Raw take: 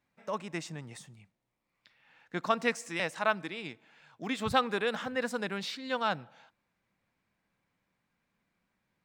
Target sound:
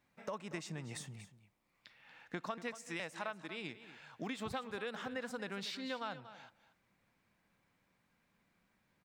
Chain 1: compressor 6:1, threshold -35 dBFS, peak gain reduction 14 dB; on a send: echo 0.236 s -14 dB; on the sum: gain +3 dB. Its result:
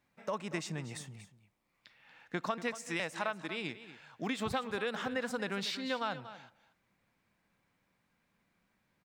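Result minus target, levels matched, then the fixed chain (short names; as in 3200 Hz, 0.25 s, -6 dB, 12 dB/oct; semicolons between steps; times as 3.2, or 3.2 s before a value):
compressor: peak gain reduction -6.5 dB
compressor 6:1, threshold -42.5 dBFS, peak gain reduction 20 dB; on a send: echo 0.236 s -14 dB; on the sum: gain +3 dB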